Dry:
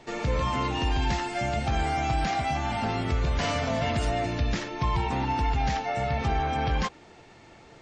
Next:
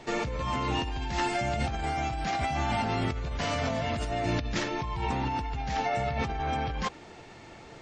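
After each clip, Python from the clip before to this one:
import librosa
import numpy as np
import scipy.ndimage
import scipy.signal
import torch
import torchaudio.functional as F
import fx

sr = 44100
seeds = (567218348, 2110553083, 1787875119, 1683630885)

y = fx.over_compress(x, sr, threshold_db=-30.0, ratio=-1.0)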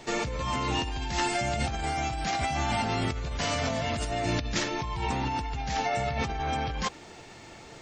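y = fx.high_shelf(x, sr, hz=5000.0, db=10.5)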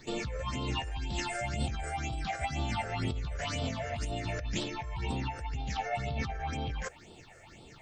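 y = fx.phaser_stages(x, sr, stages=6, low_hz=240.0, high_hz=1800.0, hz=2.0, feedback_pct=40)
y = y * 10.0 ** (-3.5 / 20.0)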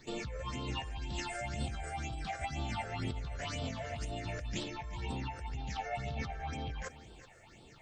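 y = x + 10.0 ** (-15.5 / 20.0) * np.pad(x, (int(373 * sr / 1000.0), 0))[:len(x)]
y = y * 10.0 ** (-4.5 / 20.0)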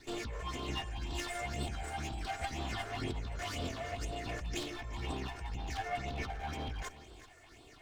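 y = fx.lower_of_two(x, sr, delay_ms=2.8)
y = y * 10.0 ** (1.5 / 20.0)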